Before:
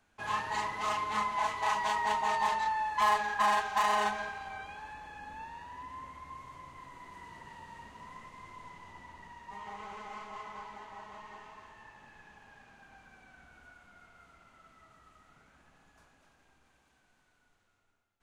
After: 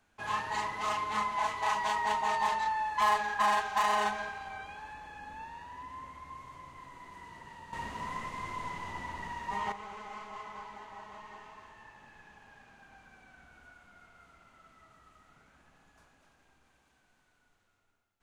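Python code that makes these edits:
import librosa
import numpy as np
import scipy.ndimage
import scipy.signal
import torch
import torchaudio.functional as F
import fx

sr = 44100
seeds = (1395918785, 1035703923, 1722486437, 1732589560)

y = fx.edit(x, sr, fx.clip_gain(start_s=7.73, length_s=1.99, db=10.5), tone=tone)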